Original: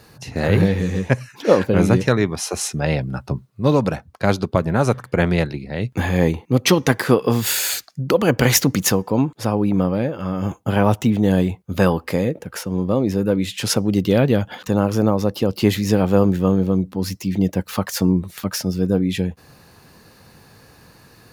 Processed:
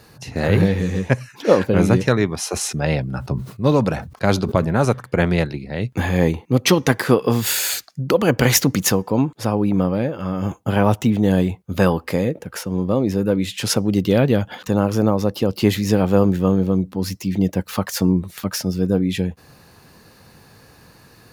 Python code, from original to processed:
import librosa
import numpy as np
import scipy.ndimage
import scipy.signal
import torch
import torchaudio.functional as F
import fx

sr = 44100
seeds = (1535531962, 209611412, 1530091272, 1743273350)

y = fx.sustainer(x, sr, db_per_s=100.0, at=(2.49, 4.85))